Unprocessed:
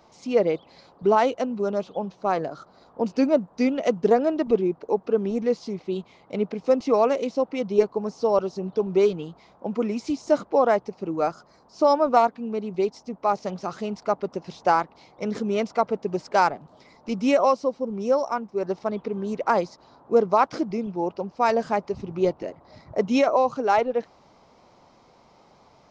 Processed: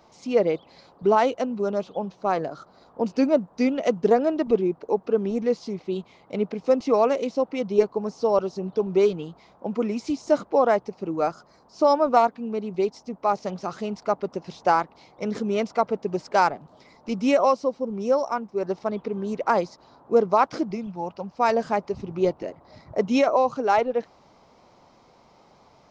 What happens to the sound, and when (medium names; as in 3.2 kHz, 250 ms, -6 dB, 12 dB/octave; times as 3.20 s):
20.74–21.36 s: peaking EQ 380 Hz -14 dB -> -7.5 dB